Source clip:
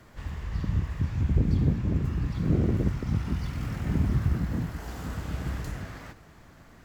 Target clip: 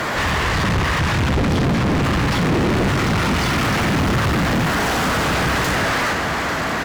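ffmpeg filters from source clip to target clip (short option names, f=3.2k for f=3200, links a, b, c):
-filter_complex "[0:a]aecho=1:1:423|846|1269|1692|2115:0.141|0.0791|0.0443|0.0248|0.0139,asplit=2[a][b];[b]highpass=f=720:p=1,volume=47dB,asoftclip=type=tanh:threshold=-11dB[c];[a][c]amix=inputs=2:normalize=0,lowpass=f=3.2k:p=1,volume=-6dB"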